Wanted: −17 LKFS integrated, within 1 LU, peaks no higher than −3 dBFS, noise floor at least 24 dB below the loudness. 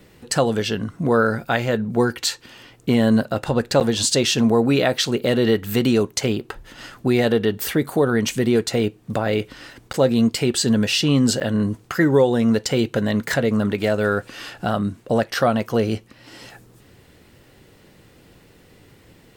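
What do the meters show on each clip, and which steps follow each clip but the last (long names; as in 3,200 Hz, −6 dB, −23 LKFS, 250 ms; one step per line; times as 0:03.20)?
number of dropouts 3; longest dropout 8.7 ms; integrated loudness −20.0 LKFS; sample peak −3.5 dBFS; target loudness −17.0 LKFS
→ repair the gap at 0:03.80/0:09.93/0:11.40, 8.7 ms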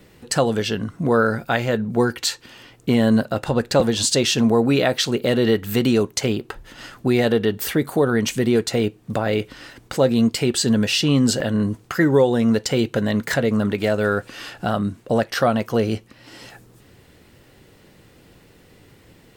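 number of dropouts 0; integrated loudness −20.0 LKFS; sample peak −3.5 dBFS; target loudness −17.0 LKFS
→ level +3 dB
brickwall limiter −3 dBFS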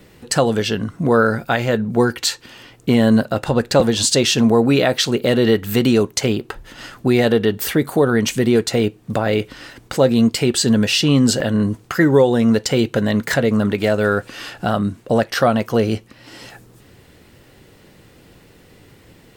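integrated loudness −17.5 LKFS; sample peak −3.0 dBFS; background noise floor −49 dBFS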